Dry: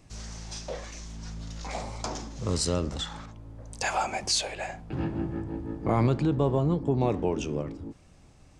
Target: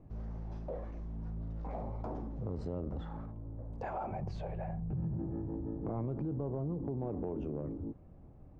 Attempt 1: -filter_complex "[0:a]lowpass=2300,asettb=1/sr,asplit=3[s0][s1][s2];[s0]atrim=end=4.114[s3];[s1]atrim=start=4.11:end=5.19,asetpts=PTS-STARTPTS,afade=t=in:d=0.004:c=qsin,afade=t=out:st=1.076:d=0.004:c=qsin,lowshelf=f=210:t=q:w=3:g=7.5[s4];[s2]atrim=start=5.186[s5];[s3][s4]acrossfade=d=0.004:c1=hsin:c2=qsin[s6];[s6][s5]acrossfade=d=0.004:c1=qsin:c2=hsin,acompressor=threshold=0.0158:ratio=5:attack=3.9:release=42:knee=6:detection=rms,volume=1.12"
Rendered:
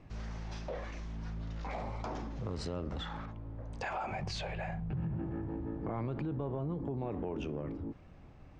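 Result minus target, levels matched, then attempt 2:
2 kHz band +12.0 dB
-filter_complex "[0:a]lowpass=680,asettb=1/sr,asplit=3[s0][s1][s2];[s0]atrim=end=4.114[s3];[s1]atrim=start=4.11:end=5.19,asetpts=PTS-STARTPTS,afade=t=in:d=0.004:c=qsin,afade=t=out:st=1.076:d=0.004:c=qsin,lowshelf=f=210:t=q:w=3:g=7.5[s4];[s2]atrim=start=5.186[s5];[s3][s4]acrossfade=d=0.004:c1=hsin:c2=qsin[s6];[s6][s5]acrossfade=d=0.004:c1=qsin:c2=hsin,acompressor=threshold=0.0158:ratio=5:attack=3.9:release=42:knee=6:detection=rms,volume=1.12"

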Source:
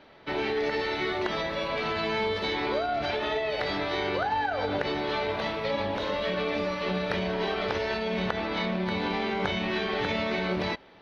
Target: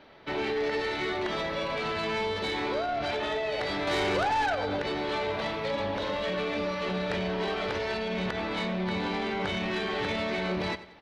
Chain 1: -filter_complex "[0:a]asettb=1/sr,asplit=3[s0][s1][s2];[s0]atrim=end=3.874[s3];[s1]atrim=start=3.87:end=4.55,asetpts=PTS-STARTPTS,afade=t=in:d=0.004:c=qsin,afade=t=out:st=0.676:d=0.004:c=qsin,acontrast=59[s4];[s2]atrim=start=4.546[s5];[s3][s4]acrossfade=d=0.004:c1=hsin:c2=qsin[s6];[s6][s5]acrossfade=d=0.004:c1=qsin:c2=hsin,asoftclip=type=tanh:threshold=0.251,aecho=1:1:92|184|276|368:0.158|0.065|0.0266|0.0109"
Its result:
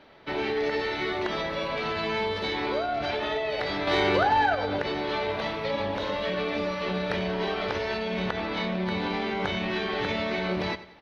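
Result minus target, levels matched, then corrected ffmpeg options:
saturation: distortion -15 dB
-filter_complex "[0:a]asettb=1/sr,asplit=3[s0][s1][s2];[s0]atrim=end=3.874[s3];[s1]atrim=start=3.87:end=4.55,asetpts=PTS-STARTPTS,afade=t=in:d=0.004:c=qsin,afade=t=out:st=0.676:d=0.004:c=qsin,acontrast=59[s4];[s2]atrim=start=4.546[s5];[s3][s4]acrossfade=d=0.004:c1=hsin:c2=qsin[s6];[s6][s5]acrossfade=d=0.004:c1=qsin:c2=hsin,asoftclip=type=tanh:threshold=0.0668,aecho=1:1:92|184|276|368:0.158|0.065|0.0266|0.0109"

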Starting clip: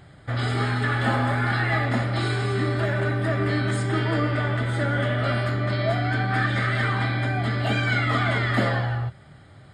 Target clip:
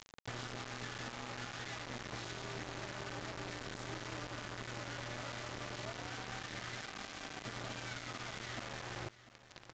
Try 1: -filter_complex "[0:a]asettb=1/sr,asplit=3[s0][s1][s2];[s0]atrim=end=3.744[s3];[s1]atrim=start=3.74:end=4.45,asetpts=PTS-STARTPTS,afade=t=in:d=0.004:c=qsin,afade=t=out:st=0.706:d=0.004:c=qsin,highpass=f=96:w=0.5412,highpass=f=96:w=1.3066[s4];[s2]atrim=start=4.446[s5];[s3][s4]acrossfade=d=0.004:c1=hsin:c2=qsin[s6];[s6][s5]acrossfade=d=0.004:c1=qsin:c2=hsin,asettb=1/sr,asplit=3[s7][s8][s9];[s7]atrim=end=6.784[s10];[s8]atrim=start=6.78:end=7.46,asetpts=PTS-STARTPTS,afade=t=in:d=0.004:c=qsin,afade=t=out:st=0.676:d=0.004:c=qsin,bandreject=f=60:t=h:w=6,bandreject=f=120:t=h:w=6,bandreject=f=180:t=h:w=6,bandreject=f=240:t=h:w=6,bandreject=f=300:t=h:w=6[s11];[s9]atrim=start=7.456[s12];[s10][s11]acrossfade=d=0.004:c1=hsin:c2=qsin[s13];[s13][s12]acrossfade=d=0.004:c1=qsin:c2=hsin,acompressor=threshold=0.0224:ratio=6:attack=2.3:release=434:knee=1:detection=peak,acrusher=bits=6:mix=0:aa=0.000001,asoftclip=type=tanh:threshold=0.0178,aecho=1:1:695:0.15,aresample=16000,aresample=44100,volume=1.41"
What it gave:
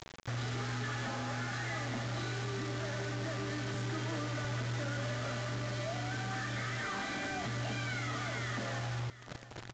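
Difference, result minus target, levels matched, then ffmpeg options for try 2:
compression: peak gain reduction -9 dB
-filter_complex "[0:a]asettb=1/sr,asplit=3[s0][s1][s2];[s0]atrim=end=3.744[s3];[s1]atrim=start=3.74:end=4.45,asetpts=PTS-STARTPTS,afade=t=in:d=0.004:c=qsin,afade=t=out:st=0.706:d=0.004:c=qsin,highpass=f=96:w=0.5412,highpass=f=96:w=1.3066[s4];[s2]atrim=start=4.446[s5];[s3][s4]acrossfade=d=0.004:c1=hsin:c2=qsin[s6];[s6][s5]acrossfade=d=0.004:c1=qsin:c2=hsin,asettb=1/sr,asplit=3[s7][s8][s9];[s7]atrim=end=6.784[s10];[s8]atrim=start=6.78:end=7.46,asetpts=PTS-STARTPTS,afade=t=in:d=0.004:c=qsin,afade=t=out:st=0.676:d=0.004:c=qsin,bandreject=f=60:t=h:w=6,bandreject=f=120:t=h:w=6,bandreject=f=180:t=h:w=6,bandreject=f=240:t=h:w=6,bandreject=f=300:t=h:w=6[s11];[s9]atrim=start=7.456[s12];[s10][s11]acrossfade=d=0.004:c1=hsin:c2=qsin[s13];[s13][s12]acrossfade=d=0.004:c1=qsin:c2=hsin,acompressor=threshold=0.00631:ratio=6:attack=2.3:release=434:knee=1:detection=peak,acrusher=bits=6:mix=0:aa=0.000001,asoftclip=type=tanh:threshold=0.0178,aecho=1:1:695:0.15,aresample=16000,aresample=44100,volume=1.41"

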